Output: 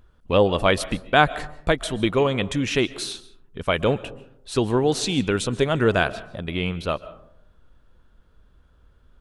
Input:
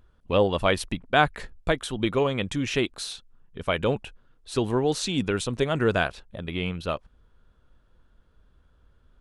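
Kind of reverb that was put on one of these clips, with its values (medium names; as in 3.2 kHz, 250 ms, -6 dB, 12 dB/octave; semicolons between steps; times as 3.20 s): algorithmic reverb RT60 0.75 s, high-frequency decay 0.35×, pre-delay 100 ms, DRR 17 dB; trim +3.5 dB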